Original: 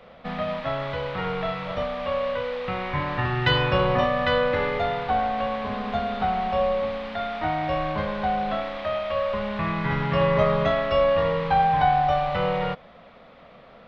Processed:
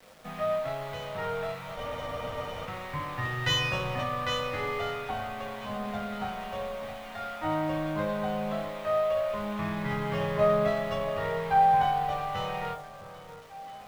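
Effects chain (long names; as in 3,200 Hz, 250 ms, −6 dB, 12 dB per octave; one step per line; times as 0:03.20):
resonators tuned to a chord G#2 major, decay 0.28 s
bit reduction 10 bits
on a send: delay that swaps between a low-pass and a high-pass 663 ms, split 1,400 Hz, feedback 55%, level −12.5 dB
on the sum: frozen spectrum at 0:01.79, 0.86 s
windowed peak hold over 3 samples
level +6 dB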